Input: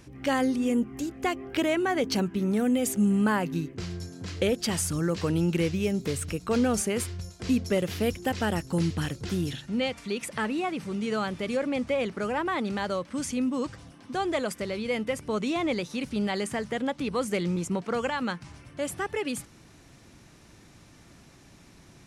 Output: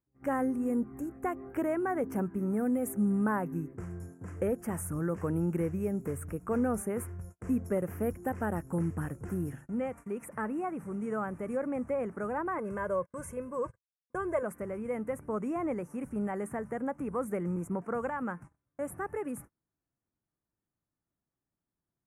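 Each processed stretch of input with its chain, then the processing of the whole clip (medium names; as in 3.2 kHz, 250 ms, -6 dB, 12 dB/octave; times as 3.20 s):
12.58–14.43 s: gate -40 dBFS, range -37 dB + comb 1.9 ms, depth 79%
whole clip: gate -41 dBFS, range -32 dB; Chebyshev band-stop 1.4–9.8 kHz, order 2; dynamic bell 7.7 kHz, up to -6 dB, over -56 dBFS, Q 1.6; trim -4 dB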